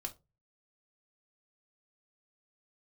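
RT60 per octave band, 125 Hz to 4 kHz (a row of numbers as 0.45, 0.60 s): 0.55, 0.30, 0.30, 0.20, 0.15, 0.15 s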